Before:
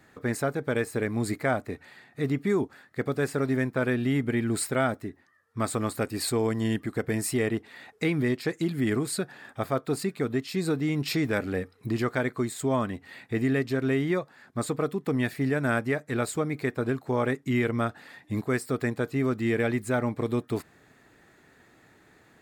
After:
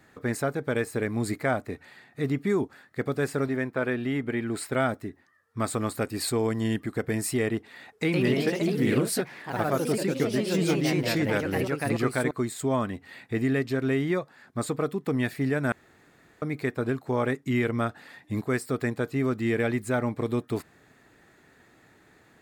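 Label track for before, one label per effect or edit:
3.480000	4.720000	tone controls bass -6 dB, treble -7 dB
7.890000	12.710000	ever faster or slower copies 126 ms, each echo +2 st, echoes 3
15.720000	16.420000	room tone

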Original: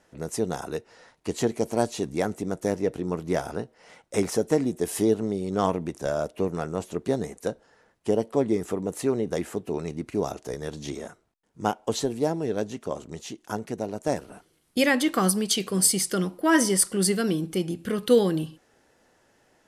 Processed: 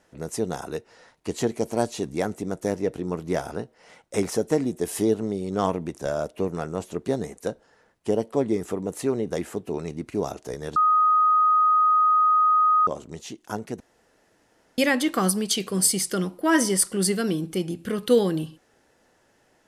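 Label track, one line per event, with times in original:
10.760000	12.870000	bleep 1.25 kHz -15.5 dBFS
13.800000	14.780000	room tone

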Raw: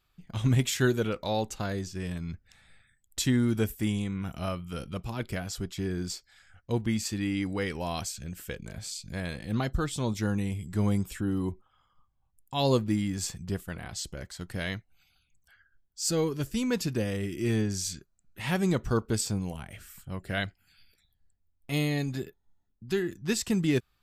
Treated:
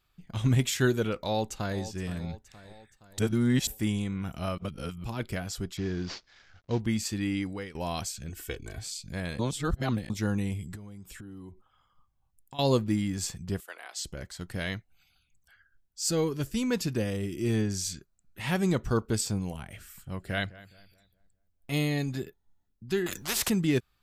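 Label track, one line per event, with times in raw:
1.140000	1.780000	echo throw 470 ms, feedback 55%, level -14 dB
3.190000	3.670000	reverse
4.580000	5.040000	reverse
5.770000	6.800000	CVSD coder 32 kbps
7.350000	7.750000	fade out, to -16 dB
8.290000	8.830000	comb 2.7 ms, depth 78%
9.390000	10.100000	reverse
10.750000	12.590000	compression 10:1, threshold -41 dBFS
13.600000	14.050000	Bessel high-pass 650 Hz, order 6
17.100000	17.540000	peaking EQ 1.8 kHz -5 dB 1 oct
19.800000	21.810000	filtered feedback delay 207 ms, feedback 39%, level -18 dB
23.060000	23.500000	spectrum-flattening compressor 4:1

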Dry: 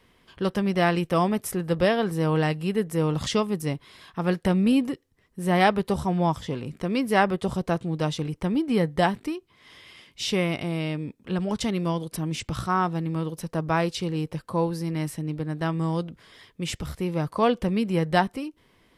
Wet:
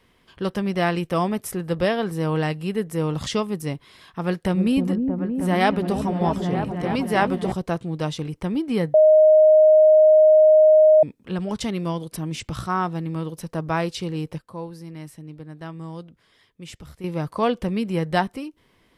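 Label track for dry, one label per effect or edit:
4.230000	7.520000	delay with an opening low-pass 314 ms, low-pass from 400 Hz, each repeat up 1 oct, level -3 dB
8.940000	11.030000	bleep 621 Hz -9.5 dBFS
14.380000	17.040000	gain -9 dB

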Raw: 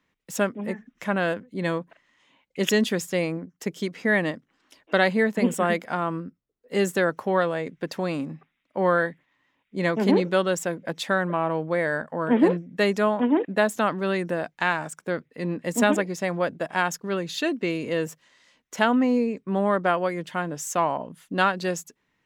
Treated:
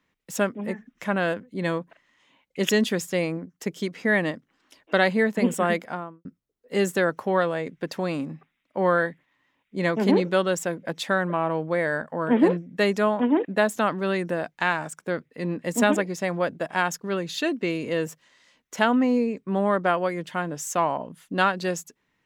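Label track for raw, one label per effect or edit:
5.760000	6.250000	studio fade out

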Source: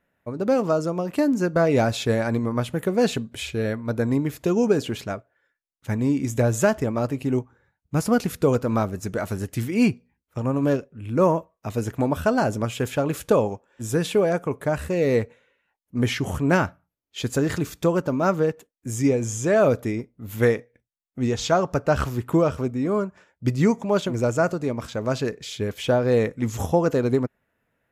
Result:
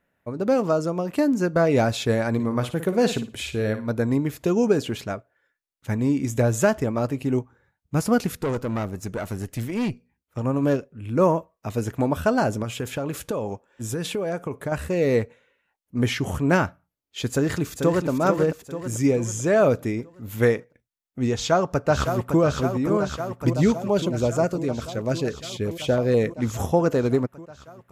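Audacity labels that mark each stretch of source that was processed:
2.340000	3.930000	flutter echo walls apart 9.6 m, dies away in 0.31 s
8.350000	10.380000	valve stage drive 21 dB, bias 0.45
12.620000	14.720000	compression, threshold -23 dBFS
17.310000	18.080000	echo throw 440 ms, feedback 50%, level -6 dB
21.330000	22.410000	echo throw 560 ms, feedback 80%, level -7 dB
23.560000	26.390000	LFO notch saw down 6.2 Hz 710–2100 Hz

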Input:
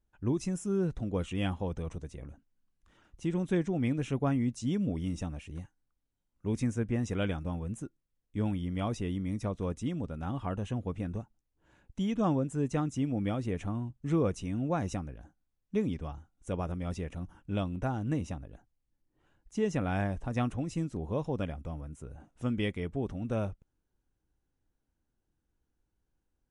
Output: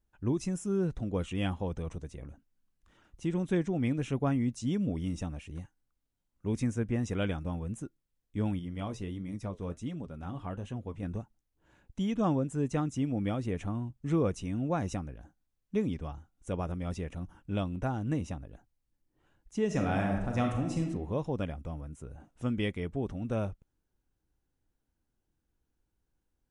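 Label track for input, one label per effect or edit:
8.590000	11.030000	flange 1.4 Hz, delay 4.8 ms, depth 7.8 ms, regen -62%
19.650000	20.820000	reverb throw, RT60 0.94 s, DRR 1.5 dB

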